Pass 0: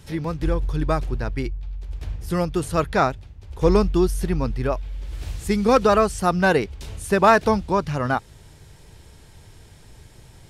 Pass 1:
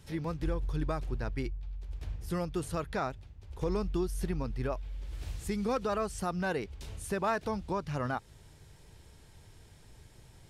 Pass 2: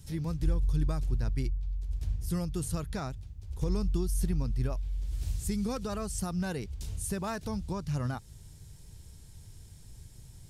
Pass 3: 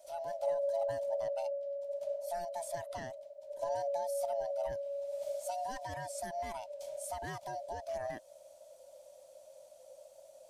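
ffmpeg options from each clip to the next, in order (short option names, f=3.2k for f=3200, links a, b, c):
-af "alimiter=limit=-14dB:level=0:latency=1:release=184,volume=-8.5dB"
-af "bass=f=250:g=13,treble=f=4k:g=14,volume=-6.5dB"
-af "afftfilt=real='real(if(lt(b,1008),b+24*(1-2*mod(floor(b/24),2)),b),0)':imag='imag(if(lt(b,1008),b+24*(1-2*mod(floor(b/24),2)),b),0)':win_size=2048:overlap=0.75,volume=-7dB"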